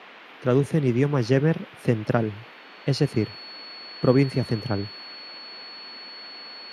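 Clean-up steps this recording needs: band-stop 4.4 kHz, Q 30; noise print and reduce 22 dB

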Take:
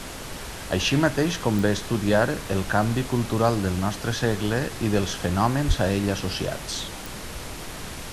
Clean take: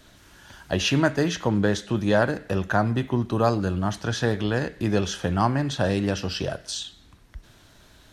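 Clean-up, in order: de-click; 5.67–5.79 s: high-pass 140 Hz 24 dB/octave; noise print and reduce 17 dB

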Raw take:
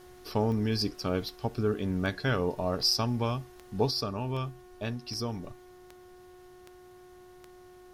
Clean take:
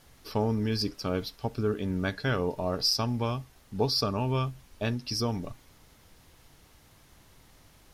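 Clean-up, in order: de-click; de-hum 363.2 Hz, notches 5; gain correction +4.5 dB, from 3.91 s

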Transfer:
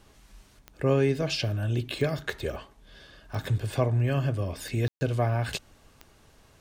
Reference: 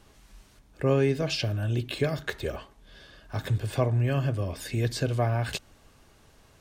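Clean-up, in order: de-click; room tone fill 4.88–5.01 s

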